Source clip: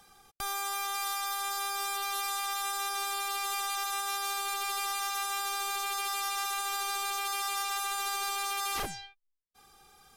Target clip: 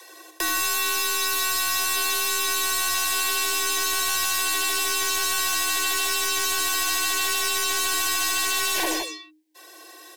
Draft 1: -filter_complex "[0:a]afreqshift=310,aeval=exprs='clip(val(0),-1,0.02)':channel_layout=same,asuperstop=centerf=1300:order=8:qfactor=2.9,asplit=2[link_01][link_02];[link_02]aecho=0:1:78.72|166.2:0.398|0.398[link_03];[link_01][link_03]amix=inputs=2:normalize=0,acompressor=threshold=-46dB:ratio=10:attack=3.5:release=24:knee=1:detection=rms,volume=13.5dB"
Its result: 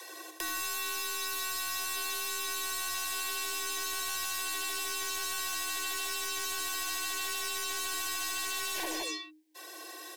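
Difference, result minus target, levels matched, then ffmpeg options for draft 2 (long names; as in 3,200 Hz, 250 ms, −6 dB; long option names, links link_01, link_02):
downward compressor: peak gain reduction +11 dB
-filter_complex "[0:a]afreqshift=310,aeval=exprs='clip(val(0),-1,0.02)':channel_layout=same,asuperstop=centerf=1300:order=8:qfactor=2.9,asplit=2[link_01][link_02];[link_02]aecho=0:1:78.72|166.2:0.398|0.398[link_03];[link_01][link_03]amix=inputs=2:normalize=0,acompressor=threshold=-34dB:ratio=10:attack=3.5:release=24:knee=1:detection=rms,volume=13.5dB"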